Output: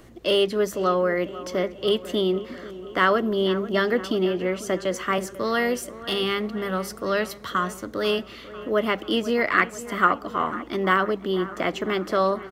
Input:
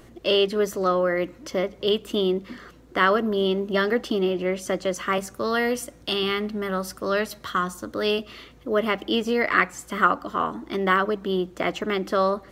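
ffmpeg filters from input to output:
-filter_complex "[0:a]acrossover=split=100|3000[s0][s1][s2];[s1]aecho=1:1:493|986|1479|1972|2465|2958:0.168|0.101|0.0604|0.0363|0.0218|0.0131[s3];[s2]asoftclip=type=hard:threshold=0.0376[s4];[s0][s3][s4]amix=inputs=3:normalize=0"

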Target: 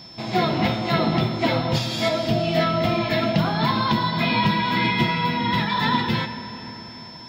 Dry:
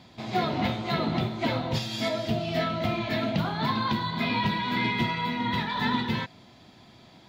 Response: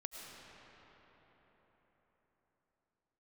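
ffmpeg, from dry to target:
-filter_complex "[0:a]aeval=exprs='val(0)+0.00447*sin(2*PI*5300*n/s)':c=same,asplit=2[s0][s1];[1:a]atrim=start_sample=2205,adelay=6[s2];[s1][s2]afir=irnorm=-1:irlink=0,volume=0.501[s3];[s0][s3]amix=inputs=2:normalize=0,volume=1.88"

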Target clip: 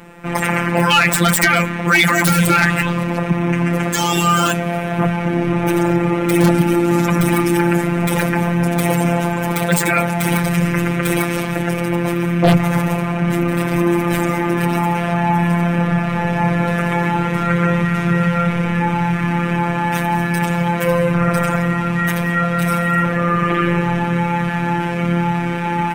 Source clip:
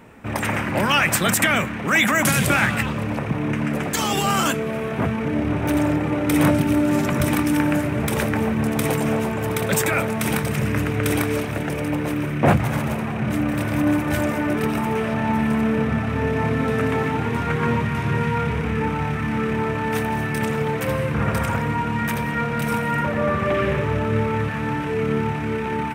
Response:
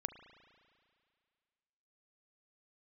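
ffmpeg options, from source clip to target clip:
-af "afftfilt=real='hypot(re,im)*cos(PI*b)':imag='0':win_size=1024:overlap=0.75,aeval=exprs='0.376*(abs(mod(val(0)/0.376+3,4)-2)-1)':c=same,acontrast=74,volume=1.41"

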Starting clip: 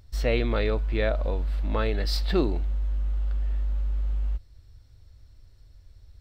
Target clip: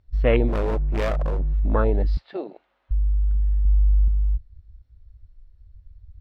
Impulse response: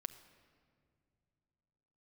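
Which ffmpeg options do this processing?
-filter_complex "[0:a]asettb=1/sr,asplit=3[s0][s1][s2];[s0]atrim=end=2.174[s3];[s1]atrim=start=2.17:end=2.91,asetpts=PTS-STARTPTS,afade=t=in:d=0.004:c=qsin,afade=t=out:st=0.736:d=0.004:c=qsin,highpass=730[s4];[s2]atrim=start=2.906[s5];[s3][s4]acrossfade=d=0.004:c1=hsin:c2=qsin[s6];[s6][s5]acrossfade=d=0.004:c1=qsin:c2=hsin,afwtdn=0.0316,lowpass=3000,asplit=3[s7][s8][s9];[s7]afade=t=out:st=0.47:d=0.02[s10];[s8]asoftclip=type=hard:threshold=0.0501,afade=t=in:st=0.47:d=0.02,afade=t=out:st=1.53:d=0.02[s11];[s9]afade=t=in:st=1.53:d=0.02[s12];[s10][s11][s12]amix=inputs=3:normalize=0,asettb=1/sr,asplit=3[s13][s14][s15];[s13]atrim=end=3.654[s16];[s14]atrim=start=3.65:end=4.08,asetpts=PTS-STARTPTS,afade=t=in:d=0.004:c=qsin,afade=t=out:st=0.426:d=0.004:c=qsin,aecho=1:1:2.4:0.65,atrim=end_sample=18963[s17];[s15]atrim=start=4.076[s18];[s16][s17]acrossfade=d=0.004:c1=hsin:c2=qsin[s19];[s19][s18]acrossfade=d=0.004:c1=qsin:c2=hsin,volume=2"

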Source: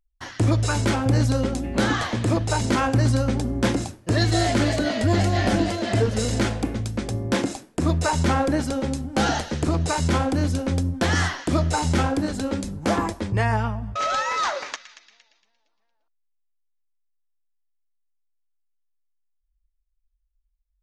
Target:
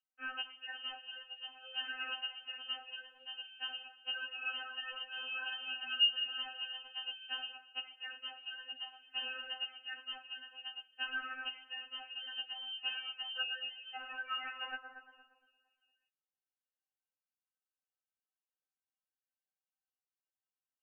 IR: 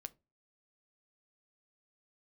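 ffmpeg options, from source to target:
-filter_complex "[0:a]acompressor=threshold=0.0282:ratio=12,asplit=3[s0][s1][s2];[s0]bandpass=f=530:t=q:w=8,volume=1[s3];[s1]bandpass=f=1840:t=q:w=8,volume=0.501[s4];[s2]bandpass=f=2480:t=q:w=8,volume=0.355[s5];[s3][s4][s5]amix=inputs=3:normalize=0,lowpass=f=2800:t=q:w=0.5098,lowpass=f=2800:t=q:w=0.6013,lowpass=f=2800:t=q:w=0.9,lowpass=f=2800:t=q:w=2.563,afreqshift=-3300,afftfilt=real='re*3.46*eq(mod(b,12),0)':imag='im*3.46*eq(mod(b,12),0)':win_size=2048:overlap=0.75,volume=3.76"

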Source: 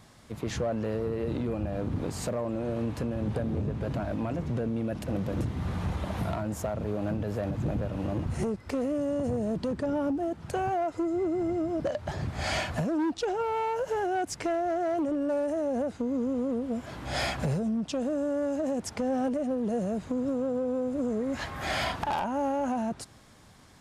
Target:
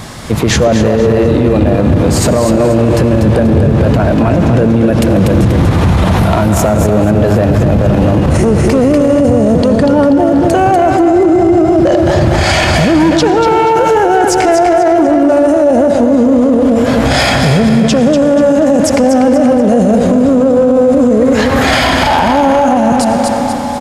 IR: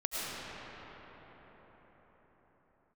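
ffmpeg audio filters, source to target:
-filter_complex "[0:a]aecho=1:1:242|484|726|968:0.501|0.18|0.065|0.0234,asplit=2[s0][s1];[1:a]atrim=start_sample=2205,asetrate=57330,aresample=44100[s2];[s1][s2]afir=irnorm=-1:irlink=0,volume=0.237[s3];[s0][s3]amix=inputs=2:normalize=0,alimiter=level_in=23.7:limit=0.891:release=50:level=0:latency=1,volume=0.891"

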